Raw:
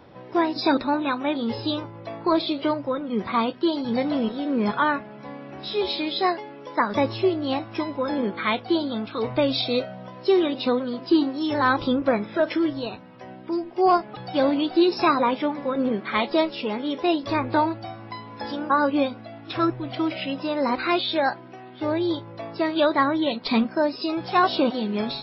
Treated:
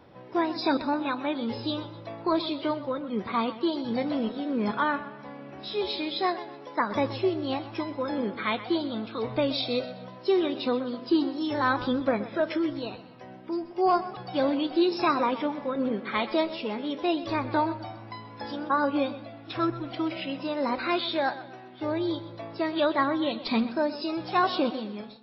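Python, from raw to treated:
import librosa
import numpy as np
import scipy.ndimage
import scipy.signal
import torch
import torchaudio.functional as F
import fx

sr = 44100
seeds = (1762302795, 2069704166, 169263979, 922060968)

y = fx.fade_out_tail(x, sr, length_s=0.62)
y = fx.echo_warbled(y, sr, ms=126, feedback_pct=40, rate_hz=2.8, cents=59, wet_db=-14.5)
y = y * librosa.db_to_amplitude(-4.5)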